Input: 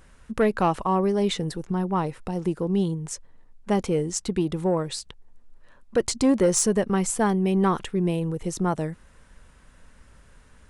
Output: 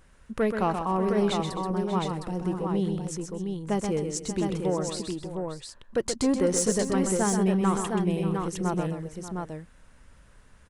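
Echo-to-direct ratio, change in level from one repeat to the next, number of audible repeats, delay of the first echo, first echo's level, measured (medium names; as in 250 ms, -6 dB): -2.0 dB, no regular repeats, 4, 128 ms, -6.5 dB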